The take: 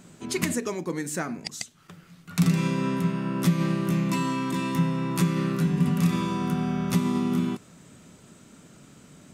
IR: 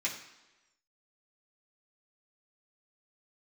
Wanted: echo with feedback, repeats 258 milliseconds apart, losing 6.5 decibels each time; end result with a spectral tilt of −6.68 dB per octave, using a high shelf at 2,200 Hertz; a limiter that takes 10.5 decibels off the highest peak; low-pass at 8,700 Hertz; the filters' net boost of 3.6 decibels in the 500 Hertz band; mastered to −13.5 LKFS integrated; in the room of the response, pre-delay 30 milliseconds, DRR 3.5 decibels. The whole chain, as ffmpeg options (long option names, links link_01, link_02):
-filter_complex "[0:a]lowpass=8700,equalizer=frequency=500:width_type=o:gain=5.5,highshelf=frequency=2200:gain=-8.5,alimiter=limit=-21.5dB:level=0:latency=1,aecho=1:1:258|516|774|1032|1290|1548:0.473|0.222|0.105|0.0491|0.0231|0.0109,asplit=2[link_01][link_02];[1:a]atrim=start_sample=2205,adelay=30[link_03];[link_02][link_03]afir=irnorm=-1:irlink=0,volume=-8.5dB[link_04];[link_01][link_04]amix=inputs=2:normalize=0,volume=15dB"